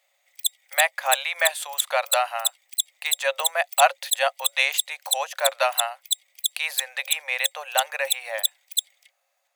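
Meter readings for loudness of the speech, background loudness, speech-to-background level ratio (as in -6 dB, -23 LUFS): -25.5 LUFS, -26.5 LUFS, 1.0 dB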